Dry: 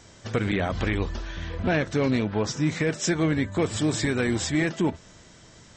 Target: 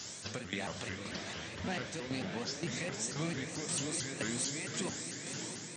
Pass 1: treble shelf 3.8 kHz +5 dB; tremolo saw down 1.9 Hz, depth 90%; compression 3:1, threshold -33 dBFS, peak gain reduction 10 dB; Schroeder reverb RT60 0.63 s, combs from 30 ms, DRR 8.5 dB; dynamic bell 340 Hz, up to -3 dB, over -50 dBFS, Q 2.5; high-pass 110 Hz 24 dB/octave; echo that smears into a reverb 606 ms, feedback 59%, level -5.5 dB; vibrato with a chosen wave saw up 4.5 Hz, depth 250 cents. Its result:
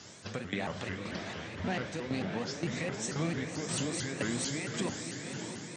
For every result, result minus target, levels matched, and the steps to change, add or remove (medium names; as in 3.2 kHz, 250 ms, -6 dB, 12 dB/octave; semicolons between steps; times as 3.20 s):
compression: peak gain reduction -4.5 dB; 8 kHz band -4.0 dB
change: compression 3:1, threshold -39 dBFS, peak gain reduction 14 dB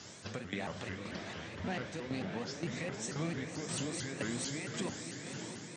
8 kHz band -4.0 dB
change: treble shelf 3.8 kHz +16.5 dB